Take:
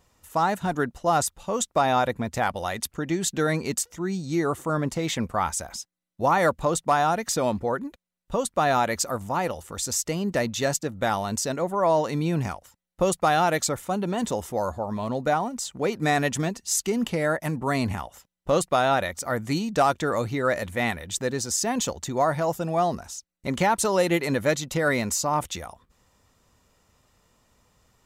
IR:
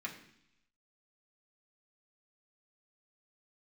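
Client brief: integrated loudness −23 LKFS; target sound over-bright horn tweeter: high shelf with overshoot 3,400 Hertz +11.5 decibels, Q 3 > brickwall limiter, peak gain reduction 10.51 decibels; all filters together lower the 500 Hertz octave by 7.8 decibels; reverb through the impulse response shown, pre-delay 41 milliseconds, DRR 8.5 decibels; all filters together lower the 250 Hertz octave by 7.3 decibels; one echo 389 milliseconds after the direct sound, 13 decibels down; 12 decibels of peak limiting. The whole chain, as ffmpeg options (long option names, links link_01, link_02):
-filter_complex "[0:a]equalizer=frequency=250:width_type=o:gain=-8,equalizer=frequency=500:width_type=o:gain=-8,alimiter=limit=-23dB:level=0:latency=1,aecho=1:1:389:0.224,asplit=2[link_01][link_02];[1:a]atrim=start_sample=2205,adelay=41[link_03];[link_02][link_03]afir=irnorm=-1:irlink=0,volume=-9dB[link_04];[link_01][link_04]amix=inputs=2:normalize=0,highshelf=frequency=3400:width_type=q:width=3:gain=11.5,volume=5.5dB,alimiter=limit=-11dB:level=0:latency=1"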